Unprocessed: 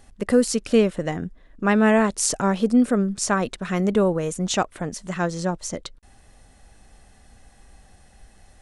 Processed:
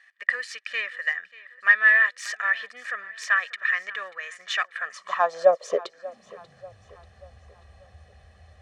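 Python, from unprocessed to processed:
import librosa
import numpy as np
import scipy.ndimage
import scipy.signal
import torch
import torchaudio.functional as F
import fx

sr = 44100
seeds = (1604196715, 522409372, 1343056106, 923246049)

p1 = fx.self_delay(x, sr, depth_ms=0.07)
p2 = scipy.signal.sosfilt(scipy.signal.butter(2, 3700.0, 'lowpass', fs=sr, output='sos'), p1)
p3 = fx.low_shelf(p2, sr, hz=230.0, db=-8.5)
p4 = p3 + 0.66 * np.pad(p3, (int(1.7 * sr / 1000.0), 0))[:len(p3)]
p5 = fx.rider(p4, sr, range_db=10, speed_s=0.5)
p6 = p4 + F.gain(torch.from_numpy(p5), -2.0).numpy()
p7 = fx.filter_sweep_highpass(p6, sr, from_hz=1800.0, to_hz=77.0, start_s=4.7, end_s=6.96, q=6.5)
p8 = p7 + fx.echo_feedback(p7, sr, ms=588, feedback_pct=46, wet_db=-19.5, dry=0)
y = F.gain(torch.from_numpy(p8), -8.5).numpy()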